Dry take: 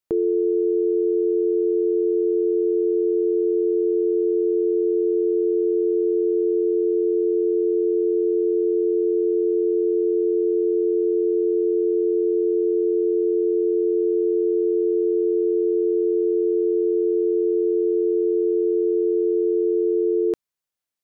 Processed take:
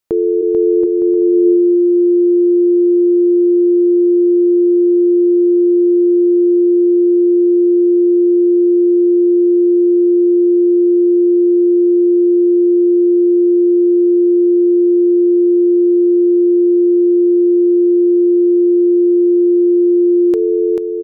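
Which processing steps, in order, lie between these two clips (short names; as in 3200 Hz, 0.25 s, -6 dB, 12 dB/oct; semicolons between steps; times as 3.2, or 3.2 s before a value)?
0.41–0.83 HPF 290 Hz -> 110 Hz 24 dB/oct; bouncing-ball echo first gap 0.44 s, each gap 0.65×, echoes 5; gain +6.5 dB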